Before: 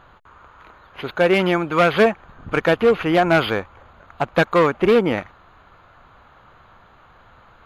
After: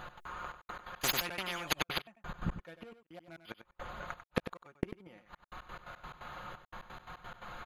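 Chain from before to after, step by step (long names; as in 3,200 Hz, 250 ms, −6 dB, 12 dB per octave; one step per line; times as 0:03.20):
high-shelf EQ 4,400 Hz +9.5 dB
notch filter 360 Hz, Q 12
comb filter 5.6 ms, depth 56%
gate with flip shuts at −11 dBFS, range −38 dB
gate pattern "x.xxxx..x.x.x." 174 BPM −60 dB
on a send: single-tap delay 95 ms −11 dB
0:01.01–0:02.02: on the sum: every bin compressed towards the loudest bin 10 to 1
level +2 dB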